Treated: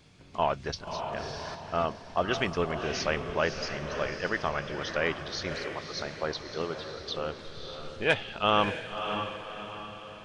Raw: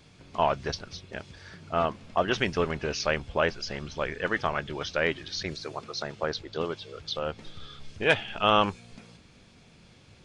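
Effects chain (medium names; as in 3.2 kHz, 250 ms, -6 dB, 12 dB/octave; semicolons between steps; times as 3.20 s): echo that smears into a reverb 586 ms, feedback 46%, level -7 dB; 0.87–1.55 s: level flattener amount 50%; trim -2.5 dB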